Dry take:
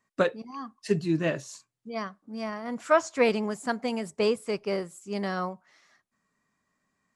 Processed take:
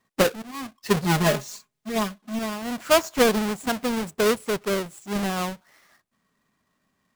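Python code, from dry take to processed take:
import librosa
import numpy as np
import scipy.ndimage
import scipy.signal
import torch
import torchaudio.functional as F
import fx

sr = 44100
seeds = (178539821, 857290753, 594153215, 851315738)

y = fx.halfwave_hold(x, sr)
y = fx.comb(y, sr, ms=4.8, depth=0.97, at=(1.04, 2.39))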